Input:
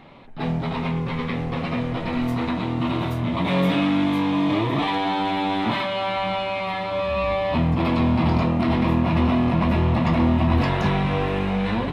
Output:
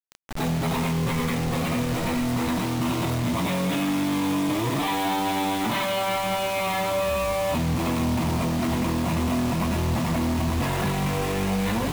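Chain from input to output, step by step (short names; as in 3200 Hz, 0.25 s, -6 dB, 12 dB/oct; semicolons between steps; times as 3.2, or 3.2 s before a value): limiter -19 dBFS, peak gain reduction 10.5 dB; requantised 6-bit, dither none; sample leveller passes 1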